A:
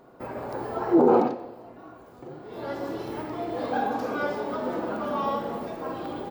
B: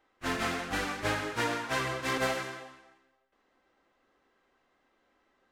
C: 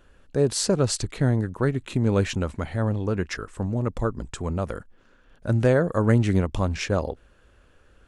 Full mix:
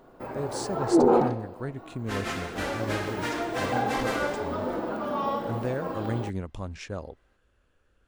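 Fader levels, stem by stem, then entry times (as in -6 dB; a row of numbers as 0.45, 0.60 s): -1.0, -1.5, -11.5 dB; 0.00, 1.85, 0.00 s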